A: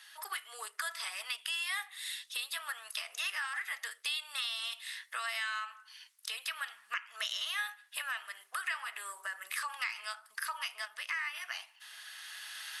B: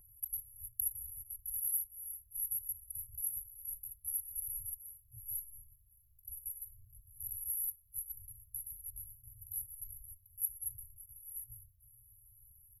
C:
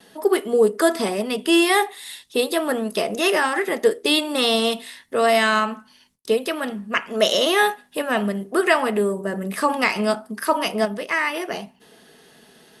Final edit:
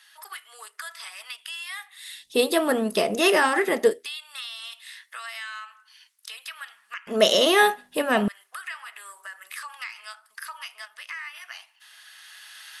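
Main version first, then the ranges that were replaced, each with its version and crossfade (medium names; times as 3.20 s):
A
2.28–3.94 s: from C, crossfade 0.24 s
7.07–8.28 s: from C
not used: B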